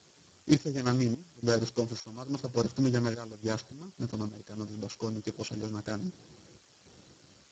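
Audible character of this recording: a buzz of ramps at a fixed pitch in blocks of 8 samples; random-step tremolo, depth 90%; a quantiser's noise floor 10-bit, dither triangular; Speex

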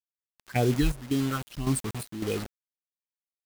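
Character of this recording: phasing stages 6, 1.9 Hz, lowest notch 360–2100 Hz; a quantiser's noise floor 6-bit, dither none; chopped level 1.8 Hz, depth 65%, duty 65%

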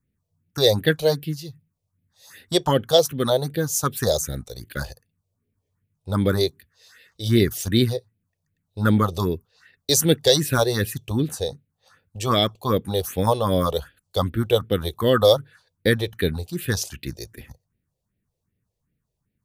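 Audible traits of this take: phasing stages 4, 2.6 Hz, lowest notch 220–1100 Hz

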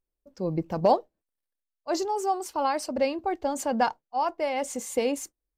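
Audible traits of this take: noise floor -87 dBFS; spectral tilt -4.5 dB/oct

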